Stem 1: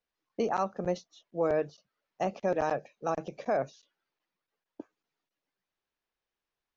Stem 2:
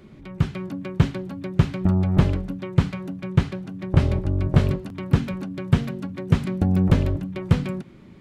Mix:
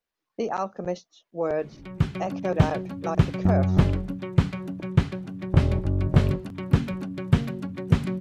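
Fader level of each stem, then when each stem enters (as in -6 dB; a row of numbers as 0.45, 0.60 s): +1.5, -1.5 dB; 0.00, 1.60 s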